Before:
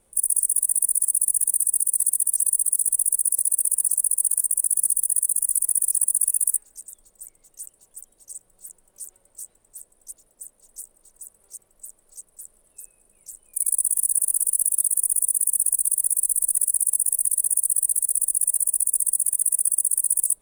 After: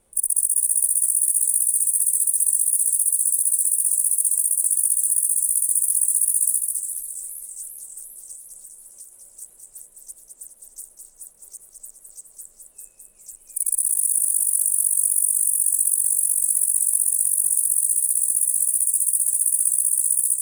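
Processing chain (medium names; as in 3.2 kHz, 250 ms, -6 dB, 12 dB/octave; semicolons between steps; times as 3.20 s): 8.33–9.42 s: compression, threshold -40 dBFS, peak gain reduction 8.5 dB; feedback echo behind a high-pass 210 ms, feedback 48%, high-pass 1.5 kHz, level -5 dB; modulated delay 406 ms, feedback 72%, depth 128 cents, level -13.5 dB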